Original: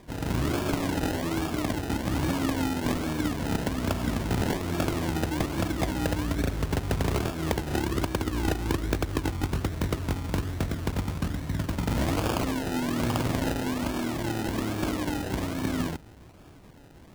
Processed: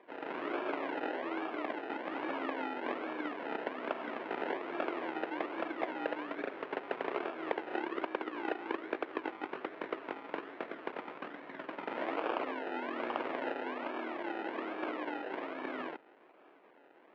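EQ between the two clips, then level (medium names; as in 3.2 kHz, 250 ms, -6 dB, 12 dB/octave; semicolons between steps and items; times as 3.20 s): high-pass 360 Hz 24 dB/octave; low-pass 2.6 kHz 24 dB/octave; -4.0 dB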